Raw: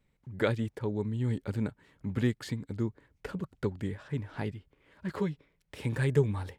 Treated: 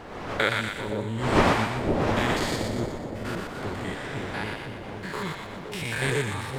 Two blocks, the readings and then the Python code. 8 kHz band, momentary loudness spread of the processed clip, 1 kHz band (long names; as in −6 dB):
+15.0 dB, 11 LU, +16.5 dB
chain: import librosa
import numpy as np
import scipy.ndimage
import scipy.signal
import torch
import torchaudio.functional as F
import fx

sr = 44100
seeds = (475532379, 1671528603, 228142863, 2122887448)

p1 = fx.spec_steps(x, sr, hold_ms=100)
p2 = fx.dmg_wind(p1, sr, seeds[0], corner_hz=390.0, level_db=-34.0)
p3 = fx.tilt_shelf(p2, sr, db=-9.5, hz=670.0)
p4 = p3 + fx.echo_split(p3, sr, split_hz=710.0, low_ms=518, high_ms=120, feedback_pct=52, wet_db=-3.5, dry=0)
y = p4 * librosa.db_to_amplitude(6.5)